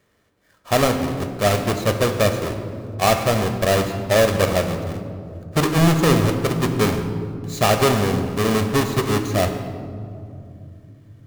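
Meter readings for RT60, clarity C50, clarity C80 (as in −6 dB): 2.6 s, 7.5 dB, 8.5 dB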